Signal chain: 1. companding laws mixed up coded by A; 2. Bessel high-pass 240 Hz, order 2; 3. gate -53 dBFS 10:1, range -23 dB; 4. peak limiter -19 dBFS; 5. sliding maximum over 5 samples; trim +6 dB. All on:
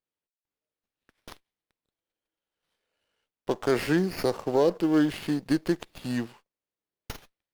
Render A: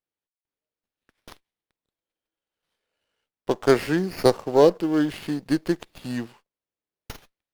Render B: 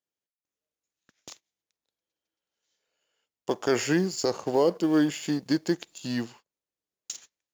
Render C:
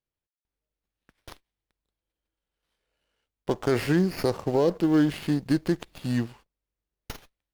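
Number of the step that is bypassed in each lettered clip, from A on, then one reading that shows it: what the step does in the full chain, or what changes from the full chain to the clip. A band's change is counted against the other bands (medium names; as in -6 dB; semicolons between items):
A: 4, crest factor change +6.5 dB; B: 5, distortion -14 dB; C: 2, 125 Hz band +5.5 dB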